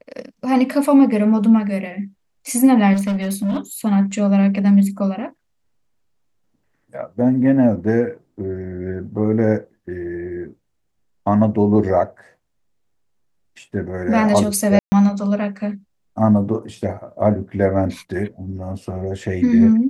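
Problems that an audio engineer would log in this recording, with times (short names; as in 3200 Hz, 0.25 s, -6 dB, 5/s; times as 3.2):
2.93–3.57 clipped -17 dBFS
14.79–14.92 gap 0.13 s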